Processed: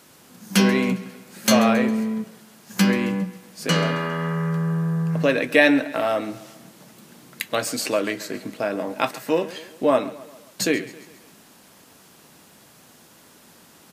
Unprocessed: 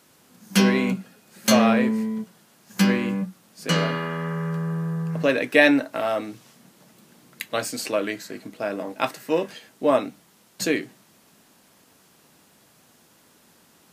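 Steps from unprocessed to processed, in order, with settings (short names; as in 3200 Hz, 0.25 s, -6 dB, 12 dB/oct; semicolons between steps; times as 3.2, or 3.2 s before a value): in parallel at +1.5 dB: compressor, threshold -31 dBFS, peak gain reduction 18.5 dB; on the sum: feedback echo 0.135 s, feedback 51%, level -17.5 dB; gain -1 dB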